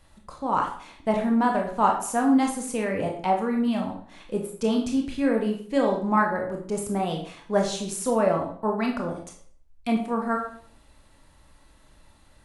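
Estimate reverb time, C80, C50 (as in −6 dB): 0.50 s, 10.5 dB, 6.5 dB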